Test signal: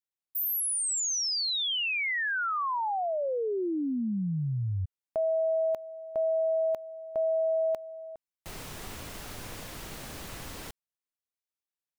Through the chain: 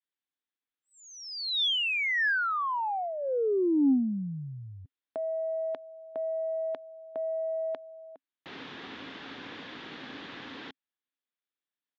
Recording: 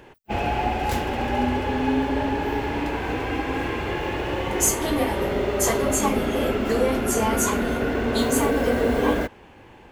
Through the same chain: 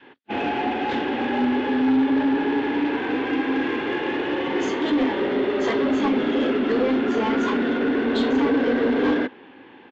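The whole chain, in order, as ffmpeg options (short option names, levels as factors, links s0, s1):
-af "highpass=230,equalizer=f=270:t=q:w=4:g=9,equalizer=f=630:t=q:w=4:g=-6,equalizer=f=1700:t=q:w=4:g=5,equalizer=f=3500:t=q:w=4:g=6,lowpass=f=3800:w=0.5412,lowpass=f=3800:w=1.3066,aresample=16000,asoftclip=type=tanh:threshold=0.133,aresample=44100,adynamicequalizer=threshold=0.0158:dfrequency=380:dqfactor=0.93:tfrequency=380:tqfactor=0.93:attack=5:release=100:ratio=0.375:range=2:mode=boostabove:tftype=bell"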